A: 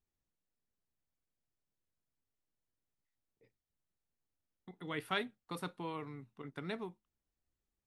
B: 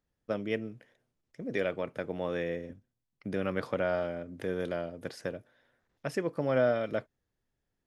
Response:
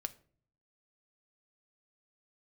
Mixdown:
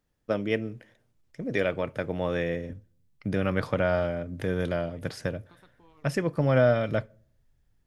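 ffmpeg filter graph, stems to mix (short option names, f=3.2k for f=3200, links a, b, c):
-filter_complex "[0:a]acompressor=threshold=-47dB:ratio=6,tremolo=f=170:d=0.621,volume=-6dB[a];[1:a]asubboost=boost=4:cutoff=150,volume=2.5dB,asplit=2[b][c];[c]volume=-5.5dB[d];[2:a]atrim=start_sample=2205[e];[d][e]afir=irnorm=-1:irlink=0[f];[a][b][f]amix=inputs=3:normalize=0"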